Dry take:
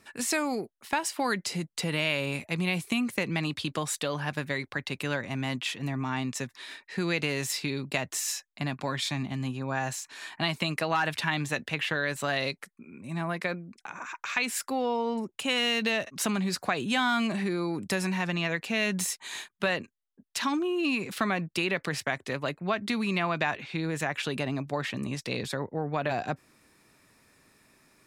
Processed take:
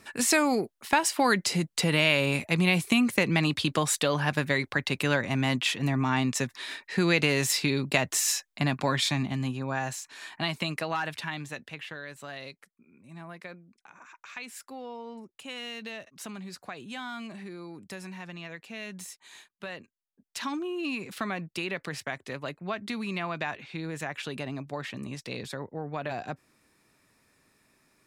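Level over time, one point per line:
0:08.93 +5 dB
0:09.96 −1.5 dB
0:10.67 −1.5 dB
0:12.05 −12 dB
0:19.65 −12 dB
0:20.41 −4.5 dB

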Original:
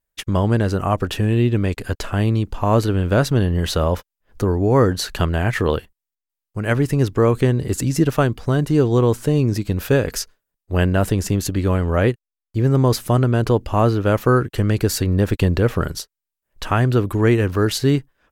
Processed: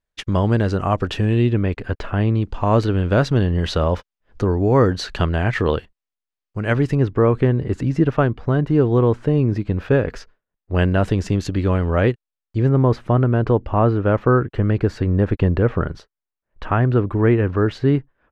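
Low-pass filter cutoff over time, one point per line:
5,300 Hz
from 0:01.53 2,600 Hz
from 0:02.42 4,500 Hz
from 0:06.95 2,200 Hz
from 0:10.75 4,100 Hz
from 0:12.69 1,900 Hz

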